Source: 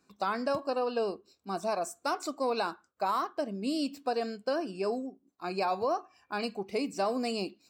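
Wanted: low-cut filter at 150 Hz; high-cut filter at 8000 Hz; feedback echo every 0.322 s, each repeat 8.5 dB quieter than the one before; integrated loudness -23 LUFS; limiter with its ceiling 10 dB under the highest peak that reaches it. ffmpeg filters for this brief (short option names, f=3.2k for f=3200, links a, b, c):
-af "highpass=150,lowpass=8k,alimiter=level_in=5dB:limit=-24dB:level=0:latency=1,volume=-5dB,aecho=1:1:322|644|966|1288:0.376|0.143|0.0543|0.0206,volume=15.5dB"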